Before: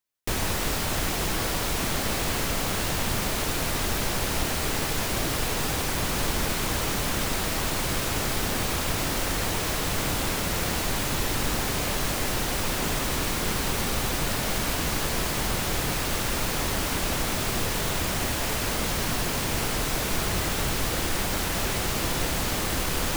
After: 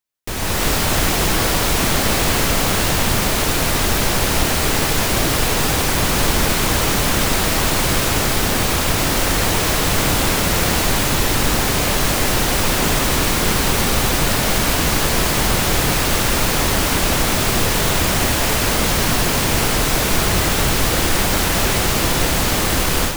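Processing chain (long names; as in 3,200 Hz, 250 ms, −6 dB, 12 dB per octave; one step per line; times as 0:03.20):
automatic gain control gain up to 10.5 dB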